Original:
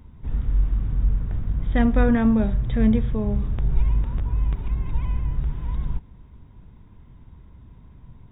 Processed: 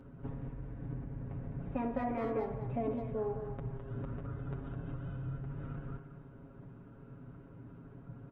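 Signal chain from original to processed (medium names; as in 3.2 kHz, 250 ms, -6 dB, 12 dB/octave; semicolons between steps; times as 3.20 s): low-pass 1.2 kHz 12 dB/octave; hum notches 50/100/150 Hz; compression 12:1, threshold -29 dBFS, peak gain reduction 15.5 dB; speakerphone echo 210 ms, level -7 dB; formant shift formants +5 st; high-pass 110 Hz 6 dB/octave; peaking EQ 560 Hz +4.5 dB 0.85 oct; comb 7.3 ms, depth 78%; spring tank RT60 1 s, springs 60 ms, chirp 80 ms, DRR 9.5 dB; trim -3.5 dB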